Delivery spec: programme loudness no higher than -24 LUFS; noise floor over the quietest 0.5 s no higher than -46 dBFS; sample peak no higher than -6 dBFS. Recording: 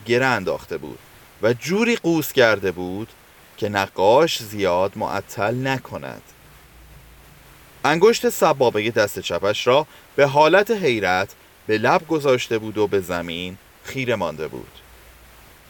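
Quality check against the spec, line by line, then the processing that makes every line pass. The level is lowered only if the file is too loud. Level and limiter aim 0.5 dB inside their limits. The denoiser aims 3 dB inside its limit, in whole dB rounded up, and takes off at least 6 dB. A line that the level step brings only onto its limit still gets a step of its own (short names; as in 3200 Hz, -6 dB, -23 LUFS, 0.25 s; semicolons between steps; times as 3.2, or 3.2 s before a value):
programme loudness -20.0 LUFS: fail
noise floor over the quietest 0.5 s -48 dBFS: OK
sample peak -3.5 dBFS: fail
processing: gain -4.5 dB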